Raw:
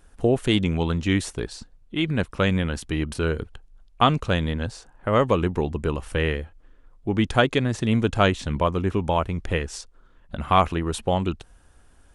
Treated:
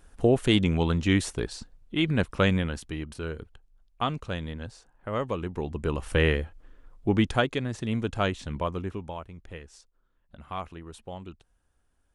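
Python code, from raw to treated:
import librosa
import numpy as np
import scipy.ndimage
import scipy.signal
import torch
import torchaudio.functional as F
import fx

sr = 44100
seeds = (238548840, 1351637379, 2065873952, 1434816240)

y = fx.gain(x, sr, db=fx.line((2.46, -1.0), (3.06, -10.0), (5.45, -10.0), (6.16, 1.0), (7.1, 1.0), (7.5, -7.5), (8.77, -7.5), (9.24, -17.0)))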